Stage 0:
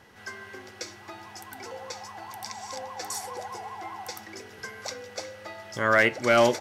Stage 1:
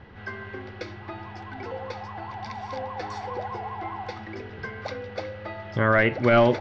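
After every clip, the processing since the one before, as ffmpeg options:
ffmpeg -i in.wav -af "lowpass=frequency=4200:width=0.5412,lowpass=frequency=4200:width=1.3066,aemphasis=mode=reproduction:type=bsi,alimiter=level_in=12.5dB:limit=-1dB:release=50:level=0:latency=1,volume=-8.5dB" out.wav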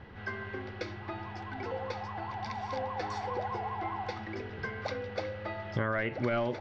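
ffmpeg -i in.wav -af "acompressor=threshold=-25dB:ratio=12,volume=-2dB" out.wav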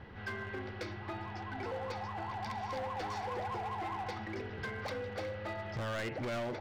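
ffmpeg -i in.wav -af "asoftclip=type=hard:threshold=-33.5dB,volume=-1dB" out.wav

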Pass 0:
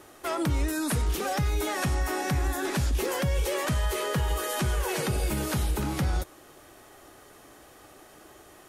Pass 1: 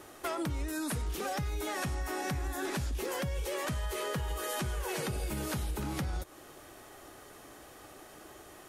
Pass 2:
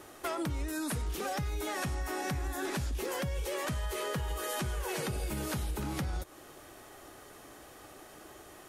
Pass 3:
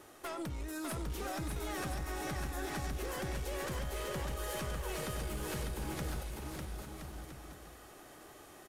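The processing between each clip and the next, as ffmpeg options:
ffmpeg -i in.wav -af "acompressor=threshold=-32dB:ratio=6" out.wav
ffmpeg -i in.wav -af anull out.wav
ffmpeg -i in.wav -filter_complex "[0:a]aeval=exprs='clip(val(0),-1,0.0211)':channel_layout=same,asplit=2[link_01][link_02];[link_02]aecho=0:1:600|1020|1314|1520|1664:0.631|0.398|0.251|0.158|0.1[link_03];[link_01][link_03]amix=inputs=2:normalize=0,volume=-5dB" out.wav

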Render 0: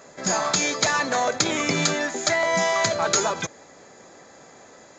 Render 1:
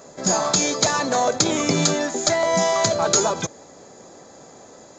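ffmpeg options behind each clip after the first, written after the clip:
ffmpeg -i in.wav -af "equalizer=frequency=2000:width=0.91:gain=-9.5,volume=5dB" out.wav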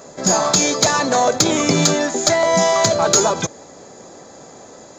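ffmpeg -i in.wav -af "asoftclip=type=tanh:threshold=-5dB,volume=4.5dB" out.wav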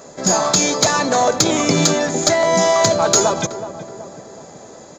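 ffmpeg -i in.wav -filter_complex "[0:a]asplit=2[link_01][link_02];[link_02]adelay=373,lowpass=frequency=1200:poles=1,volume=-11.5dB,asplit=2[link_03][link_04];[link_04]adelay=373,lowpass=frequency=1200:poles=1,volume=0.55,asplit=2[link_05][link_06];[link_06]adelay=373,lowpass=frequency=1200:poles=1,volume=0.55,asplit=2[link_07][link_08];[link_08]adelay=373,lowpass=frequency=1200:poles=1,volume=0.55,asplit=2[link_09][link_10];[link_10]adelay=373,lowpass=frequency=1200:poles=1,volume=0.55,asplit=2[link_11][link_12];[link_12]adelay=373,lowpass=frequency=1200:poles=1,volume=0.55[link_13];[link_01][link_03][link_05][link_07][link_09][link_11][link_13]amix=inputs=7:normalize=0" out.wav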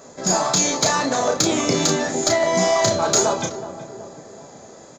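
ffmpeg -i in.wav -filter_complex "[0:a]flanger=delay=7:depth=6.1:regen=74:speed=1.8:shape=sinusoidal,asplit=2[link_01][link_02];[link_02]adelay=33,volume=-5dB[link_03];[link_01][link_03]amix=inputs=2:normalize=0" out.wav

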